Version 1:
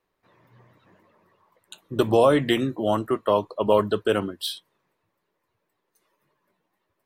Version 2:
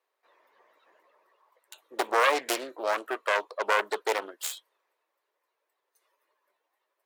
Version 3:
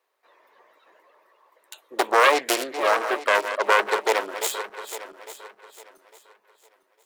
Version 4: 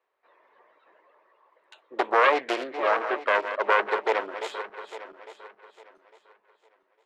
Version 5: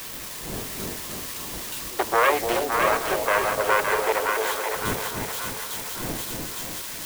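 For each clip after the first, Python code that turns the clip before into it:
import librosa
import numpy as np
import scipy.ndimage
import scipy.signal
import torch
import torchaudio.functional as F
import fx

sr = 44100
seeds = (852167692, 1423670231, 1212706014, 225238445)

y1 = fx.self_delay(x, sr, depth_ms=0.68)
y1 = scipy.signal.sosfilt(scipy.signal.butter(4, 450.0, 'highpass', fs=sr, output='sos'), y1)
y1 = y1 * librosa.db_to_amplitude(-2.5)
y2 = fx.reverse_delay_fb(y1, sr, ms=427, feedback_pct=51, wet_db=-10)
y2 = y2 * librosa.db_to_amplitude(6.0)
y3 = scipy.signal.sosfilt(scipy.signal.butter(2, 2700.0, 'lowpass', fs=sr, output='sos'), y2)
y3 = y3 * librosa.db_to_amplitude(-2.5)
y4 = y3 + 0.5 * 10.0 ** (-23.0 / 20.0) * np.diff(np.sign(y3), prepend=np.sign(y3[:1]))
y4 = fx.dmg_wind(y4, sr, seeds[0], corner_hz=440.0, level_db=-41.0)
y4 = fx.echo_split(y4, sr, split_hz=760.0, low_ms=297, high_ms=564, feedback_pct=52, wet_db=-3.5)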